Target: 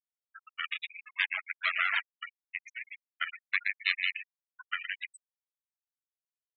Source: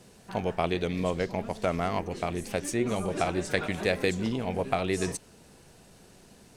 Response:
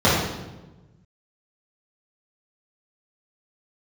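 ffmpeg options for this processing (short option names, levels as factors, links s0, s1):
-filter_complex "[0:a]aecho=1:1:119|238|357|476:0.501|0.14|0.0393|0.011,asettb=1/sr,asplit=3[s0][s1][s2];[s0]atrim=end=1.154[s3];[s1]atrim=start=1.15:end=2.04,asetpts=PTS-STARTPTS,afade=t=in:d=0.004:c=qsin,afade=t=out:st=0.886:d=0.004:c=qsin,acontrast=51[s4];[s2]atrim=start=2.036[s5];[s3][s4]acrossfade=d=0.004:c1=hsin:c2=qsin[s6];[s6][s5]acrossfade=d=0.004:c1=qsin:c2=hsin,aeval=exprs='0.376*(cos(1*acos(clip(val(0)/0.376,-1,1)))-cos(1*PI/2))+0.075*(cos(3*acos(clip(val(0)/0.376,-1,1)))-cos(3*PI/2))+0.00531*(cos(5*acos(clip(val(0)/0.376,-1,1)))-cos(5*PI/2))+0.0944*(cos(6*acos(clip(val(0)/0.376,-1,1)))-cos(6*PI/2))':c=same,highpass=f=2000:t=q:w=1.5,afftfilt=real='re*gte(hypot(re,im),0.0631)':imag='im*gte(hypot(re,im),0.0631)':win_size=1024:overlap=0.75"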